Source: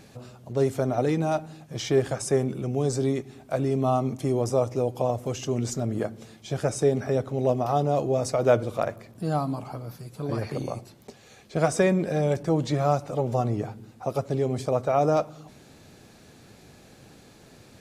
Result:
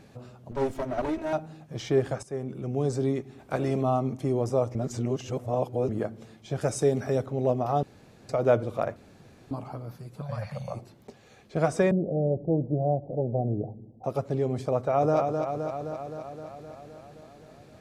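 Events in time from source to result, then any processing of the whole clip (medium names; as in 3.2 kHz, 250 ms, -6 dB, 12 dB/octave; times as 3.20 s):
0.51–1.33 s: comb filter that takes the minimum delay 3.1 ms
2.23–2.79 s: fade in, from -15 dB
3.38–3.81 s: spectral peaks clipped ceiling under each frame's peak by 12 dB
4.75–5.89 s: reverse
6.61–7.26 s: treble shelf 4 kHz +10.5 dB
7.83–8.29 s: room tone
8.96–9.51 s: room tone
10.21–10.74 s: elliptic band-stop 200–540 Hz
11.91–14.04 s: steep low-pass 720 Hz 48 dB/octave
14.76–15.18 s: echo throw 260 ms, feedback 70%, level -5 dB
whole clip: treble shelf 3.2 kHz -8.5 dB; trim -1.5 dB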